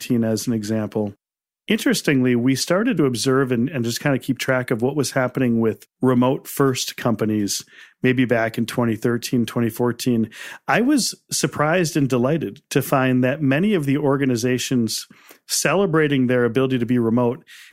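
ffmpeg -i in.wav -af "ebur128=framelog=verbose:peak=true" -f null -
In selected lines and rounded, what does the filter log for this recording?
Integrated loudness:
  I:         -20.2 LUFS
  Threshold: -30.3 LUFS
Loudness range:
  LRA:         1.6 LU
  Threshold: -40.3 LUFS
  LRA low:   -21.1 LUFS
  LRA high:  -19.5 LUFS
True peak:
  Peak:       -3.7 dBFS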